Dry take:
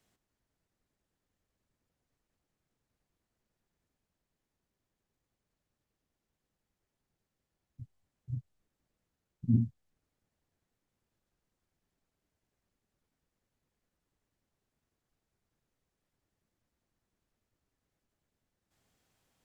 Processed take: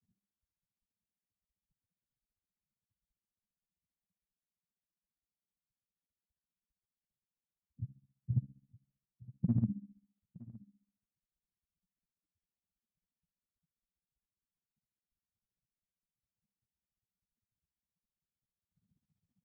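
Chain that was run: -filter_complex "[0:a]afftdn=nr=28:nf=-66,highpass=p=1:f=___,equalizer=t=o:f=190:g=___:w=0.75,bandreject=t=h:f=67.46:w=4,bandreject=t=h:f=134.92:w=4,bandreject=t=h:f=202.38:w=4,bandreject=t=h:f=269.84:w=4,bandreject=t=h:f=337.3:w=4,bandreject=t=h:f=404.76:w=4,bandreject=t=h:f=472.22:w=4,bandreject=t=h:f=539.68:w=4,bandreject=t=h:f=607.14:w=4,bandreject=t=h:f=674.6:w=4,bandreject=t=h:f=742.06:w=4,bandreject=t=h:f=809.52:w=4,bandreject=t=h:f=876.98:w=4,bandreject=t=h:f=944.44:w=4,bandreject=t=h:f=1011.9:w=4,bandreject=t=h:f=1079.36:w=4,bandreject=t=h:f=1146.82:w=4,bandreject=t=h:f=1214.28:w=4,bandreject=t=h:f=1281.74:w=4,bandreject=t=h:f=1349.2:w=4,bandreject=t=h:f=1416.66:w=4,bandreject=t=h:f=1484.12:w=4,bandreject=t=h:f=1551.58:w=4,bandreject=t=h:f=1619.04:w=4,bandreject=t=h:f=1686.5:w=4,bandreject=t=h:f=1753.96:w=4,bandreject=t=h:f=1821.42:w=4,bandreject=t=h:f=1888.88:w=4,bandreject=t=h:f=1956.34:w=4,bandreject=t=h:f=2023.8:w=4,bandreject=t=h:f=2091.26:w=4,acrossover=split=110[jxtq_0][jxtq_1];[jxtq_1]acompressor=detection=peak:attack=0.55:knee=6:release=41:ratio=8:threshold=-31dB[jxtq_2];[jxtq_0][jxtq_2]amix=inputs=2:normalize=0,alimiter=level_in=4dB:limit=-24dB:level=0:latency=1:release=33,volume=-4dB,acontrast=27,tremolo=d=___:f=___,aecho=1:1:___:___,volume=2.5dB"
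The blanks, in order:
51, 13, 0.9, 15, 916, 0.0944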